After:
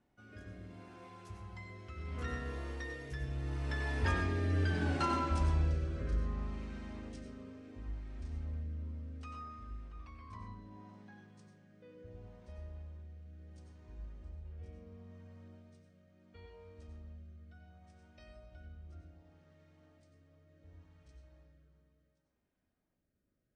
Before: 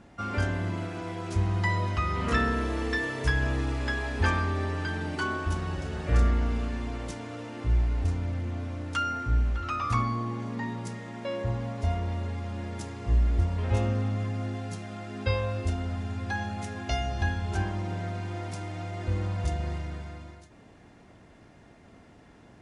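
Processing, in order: Doppler pass-by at 4.63, 28 m/s, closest 8.1 m; notch 7300 Hz, Q 27; in parallel at -2 dB: compressor, threshold -45 dBFS, peak gain reduction 16 dB; on the sum: speed mistake 25 fps video run at 24 fps; on a send at -4.5 dB: reverb RT60 0.40 s, pre-delay 88 ms; on the sum: rotary speaker horn 0.7 Hz; notches 50/100/150/200 Hz

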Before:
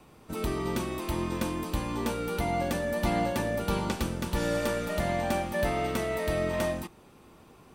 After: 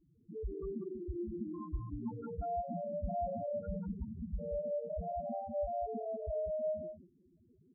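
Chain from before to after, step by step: 1.44–3.15 ten-band EQ 125 Hz +4 dB, 500 Hz -4 dB, 1000 Hz +4 dB, 4000 Hz -6 dB; loudest bins only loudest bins 2; echo 0.19 s -8 dB; gain -4 dB

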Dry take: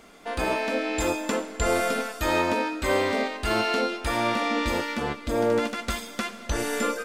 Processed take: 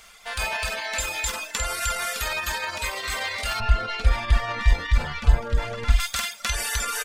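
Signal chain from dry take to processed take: loudspeakers at several distances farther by 16 m -7 dB, 88 m 0 dB; limiter -17 dBFS, peak gain reduction 8 dB; 3.6–6 RIAA curve playback; reverb removal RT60 0.91 s; passive tone stack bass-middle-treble 10-0-10; gain +9 dB

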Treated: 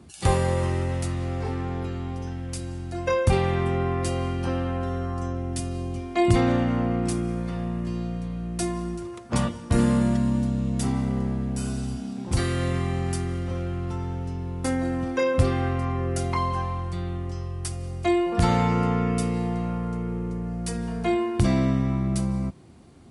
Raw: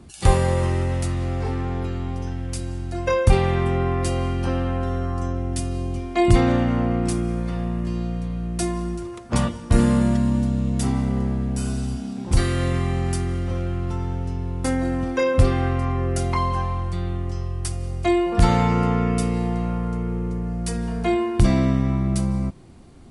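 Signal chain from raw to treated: HPF 69 Hz; gain -2.5 dB

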